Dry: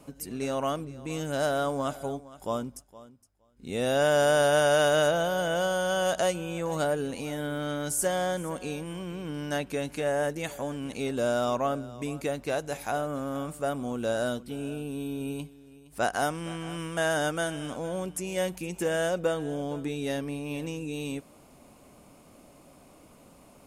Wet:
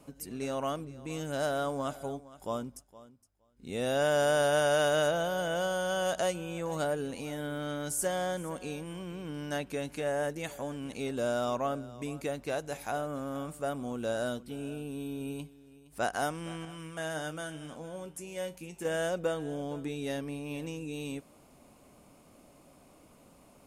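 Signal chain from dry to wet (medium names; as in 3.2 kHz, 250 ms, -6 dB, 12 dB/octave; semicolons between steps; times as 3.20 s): 16.65–18.85 s: feedback comb 78 Hz, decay 0.2 s, harmonics all, mix 70%; trim -4 dB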